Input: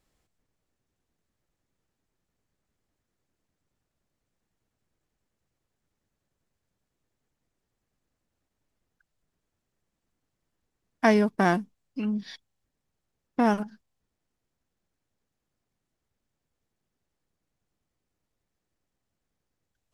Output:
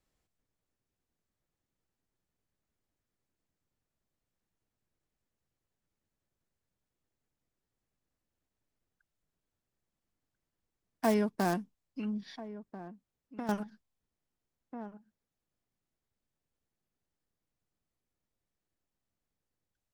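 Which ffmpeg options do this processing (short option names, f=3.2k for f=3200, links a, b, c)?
-filter_complex "[0:a]acrossover=split=330|1400[a][b][c];[c]aeval=exprs='(mod(25.1*val(0)+1,2)-1)/25.1':c=same[d];[a][b][d]amix=inputs=3:normalize=0,asplit=2[e][f];[f]adelay=1341,volume=-13dB,highshelf=f=4k:g=-30.2[g];[e][g]amix=inputs=2:normalize=0,asettb=1/sr,asplit=3[h][i][j];[h]atrim=end=12.344[k];[i]atrim=start=12.34:end=13.49,asetpts=PTS-STARTPTS,afade=t=in:d=0.004:c=qsin,afade=t=out:st=1.146:d=0.004:c=qsin,acompressor=threshold=-33dB:ratio=3[l];[j]atrim=start=13.486[m];[k][l]acrossfade=d=0.004:c1=hsin:c2=qsin[n];[n][m]acrossfade=d=0.004:c1=qsin:c2=hsin,volume=-7dB"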